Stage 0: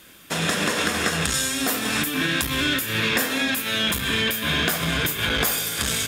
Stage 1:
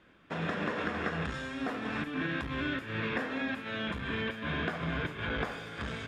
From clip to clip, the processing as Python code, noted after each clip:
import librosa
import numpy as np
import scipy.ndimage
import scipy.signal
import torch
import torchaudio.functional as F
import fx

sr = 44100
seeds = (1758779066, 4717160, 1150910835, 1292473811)

y = scipy.signal.sosfilt(scipy.signal.butter(2, 1800.0, 'lowpass', fs=sr, output='sos'), x)
y = y * 10.0 ** (-8.0 / 20.0)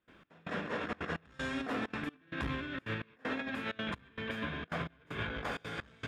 y = fx.over_compress(x, sr, threshold_db=-36.0, ratio=-0.5)
y = fx.step_gate(y, sr, bpm=194, pattern='.xx...xxxxxx', floor_db=-24.0, edge_ms=4.5)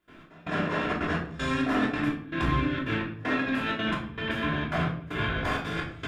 y = fx.room_shoebox(x, sr, seeds[0], volume_m3=620.0, walls='furnished', distance_m=3.1)
y = y * 10.0 ** (4.5 / 20.0)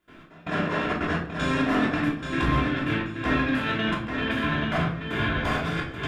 y = fx.echo_feedback(x, sr, ms=831, feedback_pct=23, wet_db=-6)
y = y * 10.0 ** (2.0 / 20.0)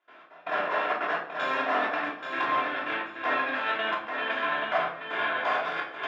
y = fx.highpass_res(x, sr, hz=700.0, q=1.6)
y = fx.air_absorb(y, sr, metres=170.0)